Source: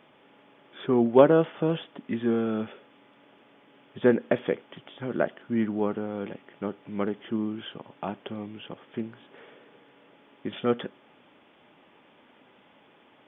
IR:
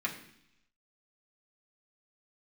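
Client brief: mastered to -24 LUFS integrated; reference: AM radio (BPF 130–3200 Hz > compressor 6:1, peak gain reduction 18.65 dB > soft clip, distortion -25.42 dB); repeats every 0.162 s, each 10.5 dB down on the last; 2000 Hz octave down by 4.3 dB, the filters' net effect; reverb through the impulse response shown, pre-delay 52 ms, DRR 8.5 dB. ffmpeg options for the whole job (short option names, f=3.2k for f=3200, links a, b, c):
-filter_complex "[0:a]equalizer=f=2k:t=o:g=-5.5,aecho=1:1:162|324|486:0.299|0.0896|0.0269,asplit=2[a][b];[1:a]atrim=start_sample=2205,adelay=52[c];[b][c]afir=irnorm=-1:irlink=0,volume=-13.5dB[d];[a][d]amix=inputs=2:normalize=0,highpass=130,lowpass=3.2k,acompressor=threshold=-31dB:ratio=6,asoftclip=threshold=-21dB,volume=14dB"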